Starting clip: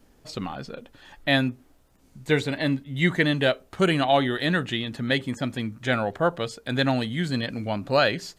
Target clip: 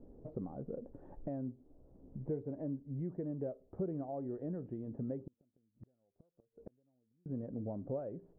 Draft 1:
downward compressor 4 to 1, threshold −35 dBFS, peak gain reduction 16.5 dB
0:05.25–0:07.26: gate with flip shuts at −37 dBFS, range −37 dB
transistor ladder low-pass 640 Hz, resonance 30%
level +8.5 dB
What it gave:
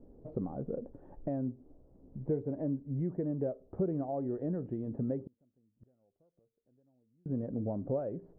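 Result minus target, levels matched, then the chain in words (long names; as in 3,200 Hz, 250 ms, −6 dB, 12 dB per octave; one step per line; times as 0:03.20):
downward compressor: peak gain reduction −5.5 dB
downward compressor 4 to 1, threshold −42.5 dBFS, peak gain reduction 22 dB
0:05.25–0:07.26: gate with flip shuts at −37 dBFS, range −37 dB
transistor ladder low-pass 640 Hz, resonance 30%
level +8.5 dB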